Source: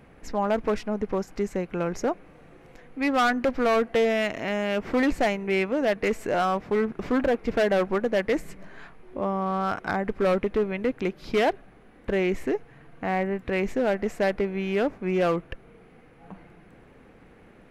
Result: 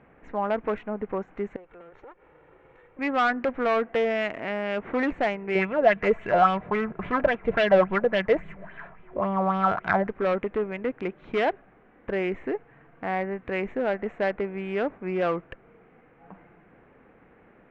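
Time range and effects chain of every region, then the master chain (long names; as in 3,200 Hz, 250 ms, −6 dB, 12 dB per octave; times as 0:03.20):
0:01.56–0:02.99: lower of the sound and its delayed copy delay 2.2 ms + bad sample-rate conversion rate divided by 4×, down none, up hold + downward compressor 4 to 1, threshold −44 dBFS
0:05.55–0:10.07: low shelf with overshoot 220 Hz +6 dB, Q 3 + comb filter 3 ms, depth 32% + auto-filter bell 3.6 Hz 450–3,500 Hz +12 dB
whole clip: adaptive Wiener filter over 9 samples; low-pass filter 2,300 Hz 12 dB per octave; spectral tilt +2 dB per octave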